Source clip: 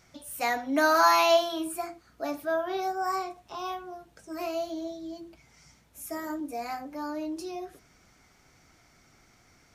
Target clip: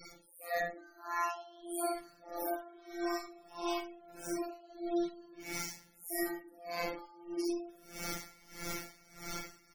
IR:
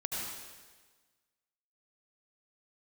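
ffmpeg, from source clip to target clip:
-filter_complex "[0:a]aeval=exprs='val(0)+0.5*0.0188*sgn(val(0))':c=same,aecho=1:1:3.6:0.35[a];[1:a]atrim=start_sample=2205,asetrate=88200,aresample=44100[b];[a][b]afir=irnorm=-1:irlink=0,afftfilt=real='hypot(re,im)*cos(PI*b)':imag='0':win_size=1024:overlap=0.75,highshelf=f=9k:g=7.5,asplit=2[c][d];[d]asoftclip=type=tanh:threshold=-27dB,volume=-10.5dB[e];[c][e]amix=inputs=2:normalize=0,dynaudnorm=f=440:g=9:m=10dB,asplit=2[f][g];[g]adelay=190,highpass=300,lowpass=3.4k,asoftclip=type=hard:threshold=-15.5dB,volume=-24dB[h];[f][h]amix=inputs=2:normalize=0,areverse,acompressor=threshold=-31dB:ratio=12,areverse,afftfilt=real='re*gte(hypot(re,im),0.00891)':imag='im*gte(hypot(re,im),0.00891)':win_size=1024:overlap=0.75,aeval=exprs='val(0)*pow(10,-25*(0.5-0.5*cos(2*PI*1.6*n/s))/20)':c=same,volume=3dB"

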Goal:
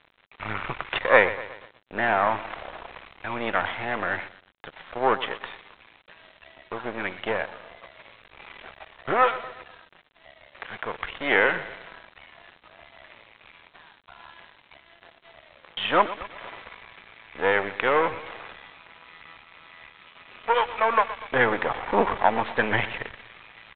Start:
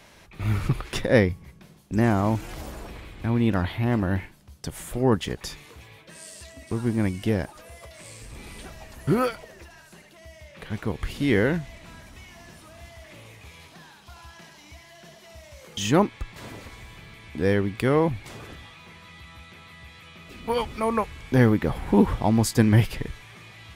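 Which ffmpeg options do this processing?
-filter_complex "[0:a]aeval=exprs='if(lt(val(0),0),0.251*val(0),val(0))':c=same,acrossover=split=550 3100:gain=0.0708 1 0.178[a][b][c];[a][b][c]amix=inputs=3:normalize=0,aecho=1:1:121|242|363|484|605|726:0.2|0.112|0.0626|0.035|0.0196|0.011,acontrast=35,aresample=8000,aeval=exprs='sgn(val(0))*max(abs(val(0))-0.00335,0)':c=same,aresample=44100,volume=6.5dB"

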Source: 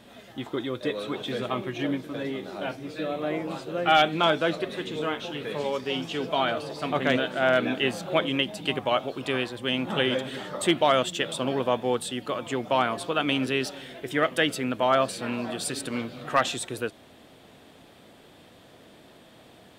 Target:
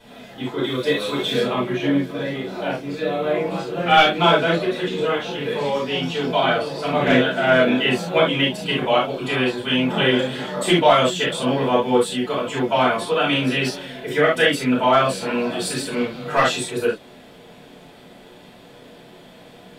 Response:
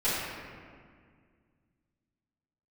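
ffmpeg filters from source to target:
-filter_complex "[0:a]asettb=1/sr,asplit=3[a][b][c];[a]atrim=end=0.634[d];[b]atrim=start=0.63:end=1.4,asetpts=PTS-STARTPTS,afade=t=in:d=0.004:c=qsin,afade=t=out:st=0.766:d=0.004:c=qsin,highshelf=f=3k:g=9.5[e];[c]atrim=start=1.396[f];[d][e]acrossfade=d=0.004:c1=hsin:c2=qsin[g];[g][f]acrossfade=d=0.004:c1=qsin:c2=hsin[h];[1:a]atrim=start_sample=2205,afade=t=out:st=0.13:d=0.01,atrim=end_sample=6174[i];[h][i]afir=irnorm=-1:irlink=0,volume=-1.5dB"

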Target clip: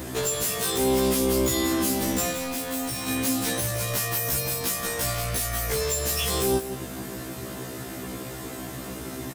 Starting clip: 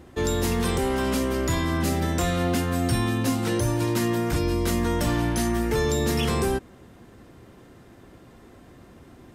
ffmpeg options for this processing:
-filter_complex "[0:a]highpass=79,aemphasis=mode=production:type=75kf,bandreject=f=630:w=12,asettb=1/sr,asplit=3[a][b][c];[a]atrim=end=4.124[d];[b]atrim=start=4.12:end=4.59,asetpts=PTS-STARTPTS,afade=t=in:d=0.004:c=qsin,afade=t=out:st=0.466:d=0.004:c=qsin,highshelf=f=9.5k:g=11.5[e];[c]atrim=start=4.586[f];[d][e]acrossfade=d=0.004:c1=hsin:c2=qsin[g];[g][f]acrossfade=d=0.004:c1=qsin:c2=hsin,acompressor=threshold=-32dB:ratio=10,aeval=exprs='0.0794*sin(PI/2*2.51*val(0)/0.0794)':c=same,aeval=exprs='val(0)+0.00178*sin(2*PI*650*n/s)':c=same,asettb=1/sr,asplit=3[h][i][j];[h]atrim=end=2.314[k];[i]atrim=start=2.31:end=3.08,asetpts=PTS-STARTPTS,afade=t=in:d=0.004:c=qsin,afade=t=out:st=0.766:d=0.004:c=qsin,asoftclip=type=hard:threshold=-29.5dB[l];[j]atrim=start=3.076[m];[k][l]acrossfade=d=0.004:c1=hsin:c2=qsin[n];[n][m]acrossfade=d=0.004:c1=qsin:c2=hsin,aecho=1:1:174:0.282,afftfilt=real='re*1.73*eq(mod(b,3),0)':imag='im*1.73*eq(mod(b,3),0)':win_size=2048:overlap=0.75,volume=3dB"

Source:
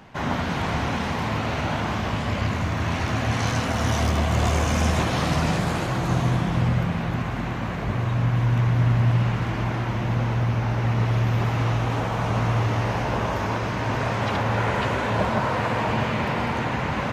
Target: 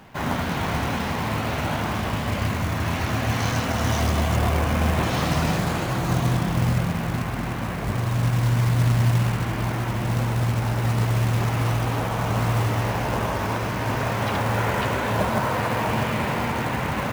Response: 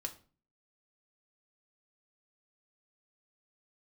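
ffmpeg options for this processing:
-filter_complex "[0:a]asettb=1/sr,asplit=3[a][b][c];[a]atrim=end=4.364[d];[b]atrim=start=4.36:end=5.03,asetpts=PTS-STARTPTS,afade=t=in:d=0.004:c=qsin,afade=t=out:st=0.666:d=0.004:c=qsin,lowpass=3.1k[e];[c]atrim=start=5.026[f];[d][e]acrossfade=d=0.004:c1=hsin:c2=qsin[g];[g][f]acrossfade=d=0.004:c1=qsin:c2=hsin,acrusher=bits=4:mode=log:mix=0:aa=0.000001"

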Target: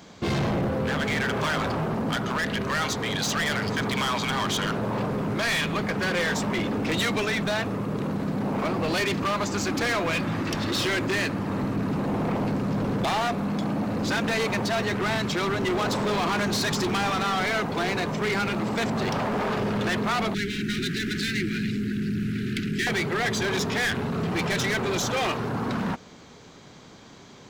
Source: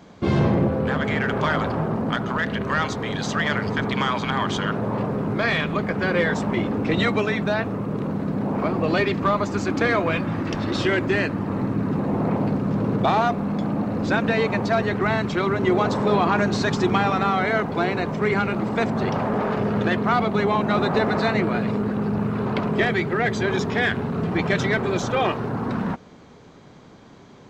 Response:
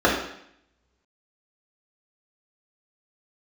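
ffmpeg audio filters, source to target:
-filter_complex "[0:a]highshelf=f=2.4k:g=11.5,volume=20.5dB,asoftclip=hard,volume=-20.5dB,asettb=1/sr,asplit=3[a][b][c];[a]atrim=end=20.344[d];[b]atrim=start=20.34:end=22.87,asetpts=PTS-STARTPTS,afade=t=in:d=0.004:c=qsin,afade=t=out:st=2.526:d=0.004:c=qsin,asuperstop=centerf=760:order=12:qfactor=0.67[e];[c]atrim=start=22.866[f];[d][e]acrossfade=d=0.004:c1=hsin:c2=qsin[g];[g][f]acrossfade=d=0.004:c1=qsin:c2=hsin,volume=-2dB"

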